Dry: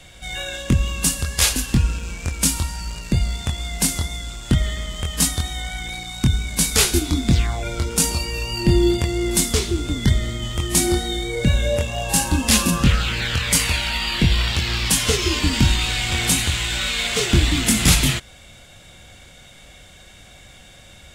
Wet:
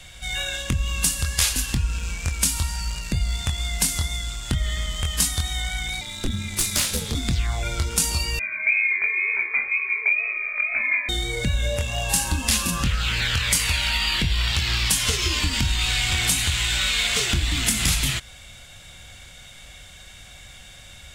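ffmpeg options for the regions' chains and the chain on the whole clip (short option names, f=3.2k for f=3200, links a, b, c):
-filter_complex "[0:a]asettb=1/sr,asplit=3[a][b][c];[a]atrim=end=6.014[d];[b]atrim=start=6.01:end=7.15,asetpts=PTS-STARTPTS,afade=t=in:d=0.004:c=qsin,afade=t=out:st=1.136:d=0.004:c=qsin,aeval=exprs='clip(val(0),-1,0.158)':c=same,aeval=exprs='val(0)*sin(2*PI*150*n/s)':c=same[e];[c]atrim=start=7.146[f];[d][e]acrossfade=d=0.004:c1=hsin:c2=qsin[g];[g][f]acrossfade=d=0.004:c1=qsin:c2=hsin,asettb=1/sr,asplit=3[h][i][j];[h]atrim=end=8.394[k];[i]atrim=start=8.39:end=11.09,asetpts=PTS-STARTPTS,afade=t=in:d=0.004:c=qsin,afade=t=out:st=2.696:d=0.004:c=qsin,lowpass=f=2.1k:t=q:w=0.5098,lowpass=f=2.1k:t=q:w=0.6013,lowpass=f=2.1k:t=q:w=0.9,lowpass=f=2.1k:t=q:w=2.563,afreqshift=-2500,flanger=delay=15:depth=7.7:speed=2[l];[j]atrim=start=11.086[m];[k][l]acrossfade=d=0.004:c1=hsin:c2=qsin[n];[n][m]acrossfade=d=0.004:c1=qsin:c2=hsin,acompressor=threshold=-19dB:ratio=5,equalizer=f=340:t=o:w=2.5:g=-9,volume=2.5dB"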